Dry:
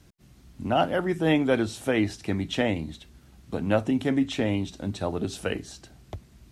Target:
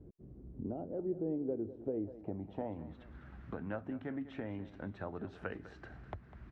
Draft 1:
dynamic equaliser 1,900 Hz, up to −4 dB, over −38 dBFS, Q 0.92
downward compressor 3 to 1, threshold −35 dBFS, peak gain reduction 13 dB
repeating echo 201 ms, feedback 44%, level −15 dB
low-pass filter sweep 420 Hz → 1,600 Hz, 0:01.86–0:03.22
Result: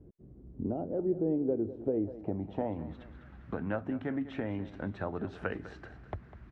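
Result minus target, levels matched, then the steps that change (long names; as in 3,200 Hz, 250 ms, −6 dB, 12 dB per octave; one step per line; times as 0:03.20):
downward compressor: peak gain reduction −6.5 dB
change: downward compressor 3 to 1, threshold −44.5 dBFS, peak gain reduction 19.5 dB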